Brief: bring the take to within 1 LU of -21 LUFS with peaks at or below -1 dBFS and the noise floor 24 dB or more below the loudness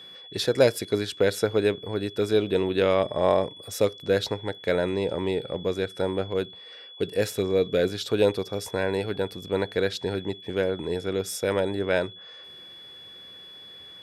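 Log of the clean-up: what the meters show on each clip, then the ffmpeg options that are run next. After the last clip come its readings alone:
steady tone 3400 Hz; tone level -43 dBFS; loudness -26.0 LUFS; peak -7.0 dBFS; loudness target -21.0 LUFS
-> -af "bandreject=f=3.4k:w=30"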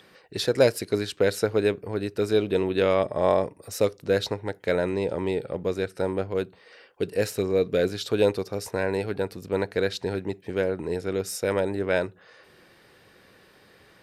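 steady tone none; loudness -26.5 LUFS; peak -7.0 dBFS; loudness target -21.0 LUFS
-> -af "volume=5.5dB"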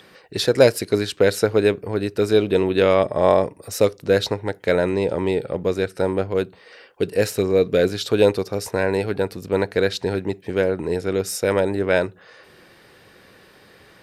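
loudness -21.0 LUFS; peak -1.5 dBFS; noise floor -51 dBFS

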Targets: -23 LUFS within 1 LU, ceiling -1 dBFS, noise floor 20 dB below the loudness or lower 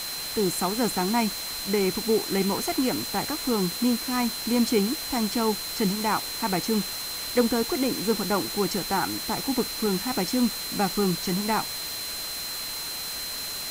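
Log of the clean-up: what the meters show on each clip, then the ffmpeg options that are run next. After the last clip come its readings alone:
steady tone 4100 Hz; tone level -34 dBFS; noise floor -33 dBFS; noise floor target -46 dBFS; loudness -26.0 LUFS; peak -7.5 dBFS; loudness target -23.0 LUFS
-> -af "bandreject=f=4.1k:w=30"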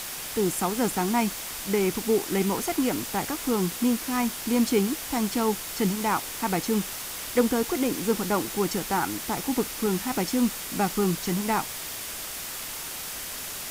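steady tone none; noise floor -36 dBFS; noise floor target -47 dBFS
-> -af "afftdn=nr=11:nf=-36"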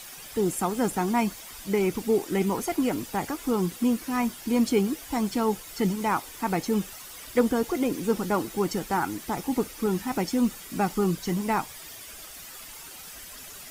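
noise floor -43 dBFS; noise floor target -47 dBFS
-> -af "afftdn=nr=6:nf=-43"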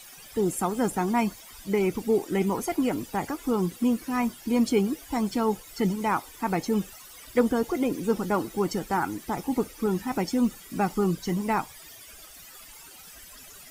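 noise floor -48 dBFS; loudness -27.5 LUFS; peak -8.5 dBFS; loudness target -23.0 LUFS
-> -af "volume=4.5dB"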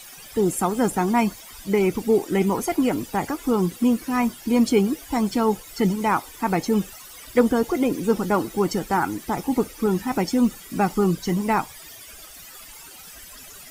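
loudness -23.0 LUFS; peak -4.0 dBFS; noise floor -43 dBFS

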